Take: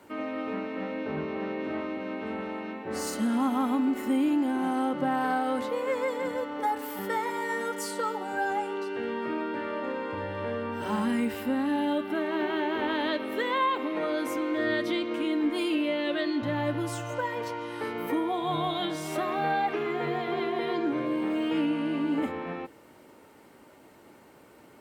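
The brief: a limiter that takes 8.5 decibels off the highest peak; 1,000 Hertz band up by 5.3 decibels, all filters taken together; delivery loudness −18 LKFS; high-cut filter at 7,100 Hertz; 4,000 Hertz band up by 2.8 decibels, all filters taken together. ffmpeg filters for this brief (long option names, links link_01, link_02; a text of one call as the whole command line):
ffmpeg -i in.wav -af "lowpass=7100,equalizer=frequency=1000:width_type=o:gain=6.5,equalizer=frequency=4000:width_type=o:gain=3.5,volume=11dB,alimiter=limit=-8.5dB:level=0:latency=1" out.wav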